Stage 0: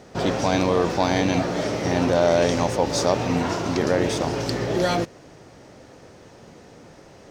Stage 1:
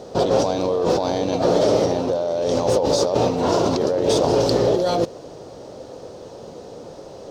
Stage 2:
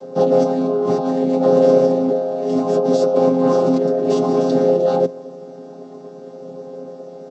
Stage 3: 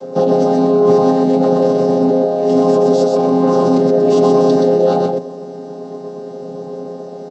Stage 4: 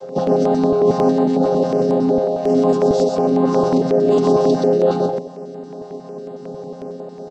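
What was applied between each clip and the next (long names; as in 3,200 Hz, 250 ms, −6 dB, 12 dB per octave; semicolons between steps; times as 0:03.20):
compressor whose output falls as the input rises −25 dBFS, ratio −1; octave-band graphic EQ 500/1,000/2,000/4,000 Hz +10/+3/−10/+6 dB
channel vocoder with a chord as carrier minor triad, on F3; comb filter 7.5 ms, depth 71%; level +1 dB
brickwall limiter −11 dBFS, peak gain reduction 8 dB; on a send: single-tap delay 125 ms −3.5 dB; on the sum: level +5.5 dB
notch on a step sequencer 11 Hz 240–5,700 Hz; level −2 dB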